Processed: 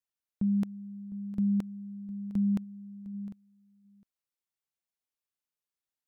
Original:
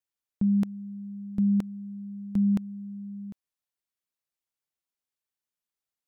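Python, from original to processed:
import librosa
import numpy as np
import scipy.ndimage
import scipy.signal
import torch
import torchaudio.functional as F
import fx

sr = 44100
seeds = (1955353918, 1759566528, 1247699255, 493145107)

y = fx.peak_eq(x, sr, hz=180.0, db=-4.5, octaves=0.77, at=(2.63, 3.13), fade=0.02)
y = y + 10.0 ** (-18.0 / 20.0) * np.pad(y, (int(707 * sr / 1000.0), 0))[:len(y)]
y = F.gain(torch.from_numpy(y), -4.0).numpy()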